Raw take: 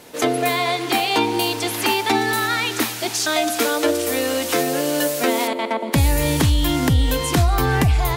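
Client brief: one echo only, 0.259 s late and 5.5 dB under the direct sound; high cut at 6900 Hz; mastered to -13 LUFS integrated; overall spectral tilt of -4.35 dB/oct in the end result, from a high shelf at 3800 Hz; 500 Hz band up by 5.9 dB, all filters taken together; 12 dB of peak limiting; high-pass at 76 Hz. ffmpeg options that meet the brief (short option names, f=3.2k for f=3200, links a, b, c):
-af "highpass=76,lowpass=6.9k,equalizer=f=500:t=o:g=7.5,highshelf=f=3.8k:g=-7.5,alimiter=limit=-15dB:level=0:latency=1,aecho=1:1:259:0.531,volume=9.5dB"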